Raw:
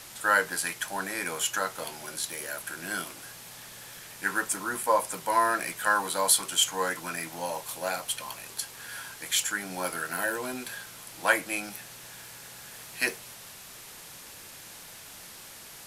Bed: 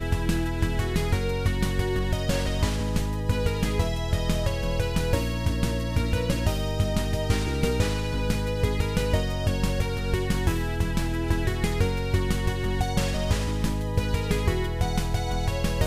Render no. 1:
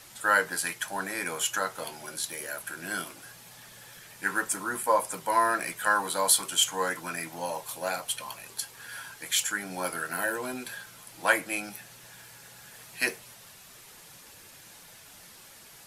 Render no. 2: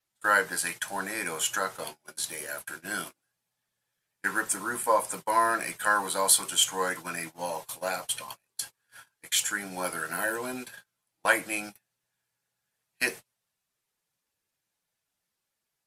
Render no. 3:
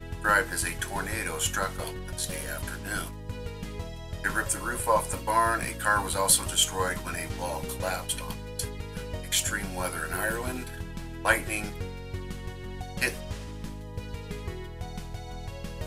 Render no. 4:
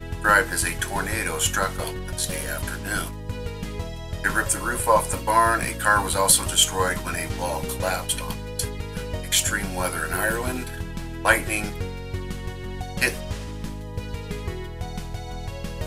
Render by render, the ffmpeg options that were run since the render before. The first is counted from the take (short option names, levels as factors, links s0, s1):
-af "afftdn=nr=6:nf=-47"
-af "adynamicequalizer=threshold=0.00398:dfrequency=8600:dqfactor=7.2:tfrequency=8600:tqfactor=7.2:attack=5:release=100:ratio=0.375:range=2:mode=boostabove:tftype=bell,agate=range=0.0224:threshold=0.0126:ratio=16:detection=peak"
-filter_complex "[1:a]volume=0.251[s0];[0:a][s0]amix=inputs=2:normalize=0"
-af "volume=1.88,alimiter=limit=0.708:level=0:latency=1"